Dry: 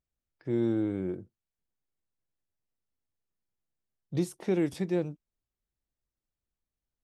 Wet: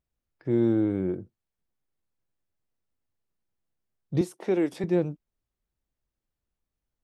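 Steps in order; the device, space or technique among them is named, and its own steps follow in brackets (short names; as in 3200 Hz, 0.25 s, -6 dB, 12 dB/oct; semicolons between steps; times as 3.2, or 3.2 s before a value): 4.21–4.84 HPF 290 Hz 12 dB/oct; behind a face mask (high shelf 2700 Hz -7.5 dB); gain +5 dB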